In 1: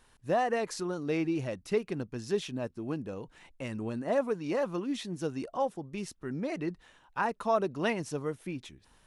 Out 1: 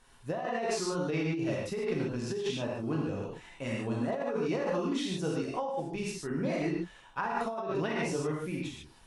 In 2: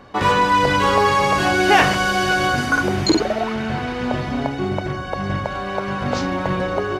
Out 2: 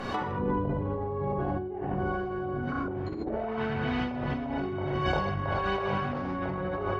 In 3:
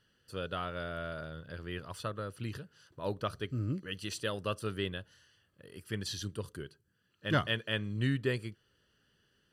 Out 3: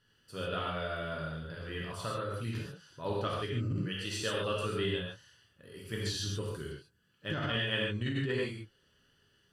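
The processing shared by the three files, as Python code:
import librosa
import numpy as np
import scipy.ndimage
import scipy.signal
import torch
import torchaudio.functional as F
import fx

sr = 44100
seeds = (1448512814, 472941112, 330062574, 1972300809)

y = fx.env_lowpass_down(x, sr, base_hz=410.0, full_db=-13.5)
y = fx.rev_gated(y, sr, seeds[0], gate_ms=170, shape='flat', drr_db=-4.0)
y = fx.over_compress(y, sr, threshold_db=-28.0, ratio=-1.0)
y = F.gain(torch.from_numpy(y), -3.0).numpy()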